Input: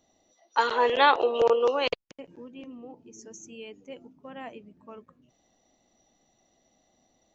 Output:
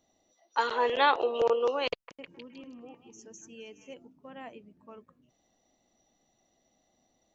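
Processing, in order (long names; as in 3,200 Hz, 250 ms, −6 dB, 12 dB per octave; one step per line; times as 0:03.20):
0:01.92–0:03.94: echo through a band-pass that steps 156 ms, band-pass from 1,300 Hz, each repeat 0.7 octaves, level −2 dB
level −4 dB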